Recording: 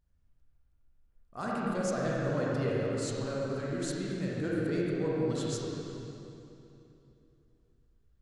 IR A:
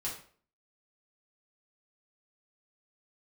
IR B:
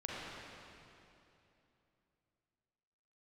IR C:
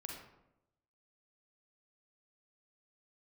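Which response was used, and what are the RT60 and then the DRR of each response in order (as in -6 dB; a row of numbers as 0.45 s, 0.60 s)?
B; 0.50 s, 2.9 s, 0.85 s; -6.5 dB, -6.0 dB, -0.5 dB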